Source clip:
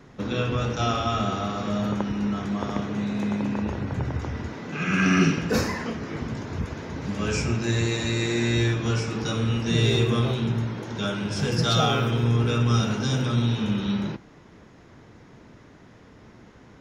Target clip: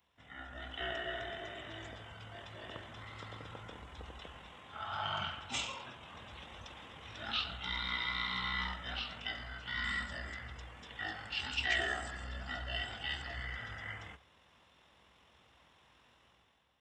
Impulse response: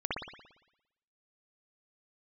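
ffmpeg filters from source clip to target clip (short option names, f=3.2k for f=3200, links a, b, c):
-filter_complex "[0:a]dynaudnorm=f=170:g=7:m=11.5dB,equalizer=f=120:t=o:w=0.69:g=13.5,asplit=2[a][b];[1:a]atrim=start_sample=2205,afade=t=out:st=0.44:d=0.01,atrim=end_sample=19845[c];[b][c]afir=irnorm=-1:irlink=0,volume=-24.5dB[d];[a][d]amix=inputs=2:normalize=0,asetrate=23361,aresample=44100,atempo=1.88775,aderivative,volume=-3dB"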